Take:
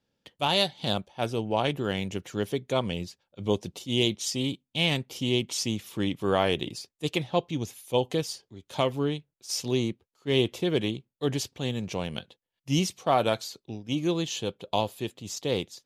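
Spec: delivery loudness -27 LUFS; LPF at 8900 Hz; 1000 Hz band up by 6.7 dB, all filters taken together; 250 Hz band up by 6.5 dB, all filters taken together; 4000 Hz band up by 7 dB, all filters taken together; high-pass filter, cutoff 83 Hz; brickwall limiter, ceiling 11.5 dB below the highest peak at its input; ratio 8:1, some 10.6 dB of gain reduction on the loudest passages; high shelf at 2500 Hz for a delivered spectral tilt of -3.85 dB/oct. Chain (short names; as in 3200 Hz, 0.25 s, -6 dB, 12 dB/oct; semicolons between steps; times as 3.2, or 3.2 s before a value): HPF 83 Hz; LPF 8900 Hz; bell 250 Hz +8 dB; bell 1000 Hz +7.5 dB; high shelf 2500 Hz +5 dB; bell 4000 Hz +4.5 dB; compressor 8:1, threshold -24 dBFS; gain +5.5 dB; limiter -14 dBFS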